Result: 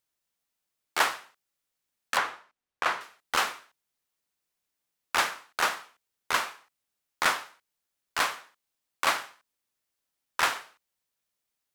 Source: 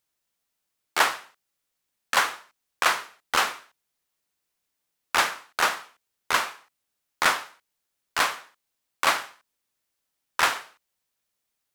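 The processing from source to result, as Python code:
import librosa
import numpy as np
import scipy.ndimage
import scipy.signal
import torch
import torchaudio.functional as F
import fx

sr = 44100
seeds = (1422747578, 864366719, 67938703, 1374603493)

y = fx.lowpass(x, sr, hz=2100.0, slope=6, at=(2.17, 3.01))
y = y * librosa.db_to_amplitude(-3.5)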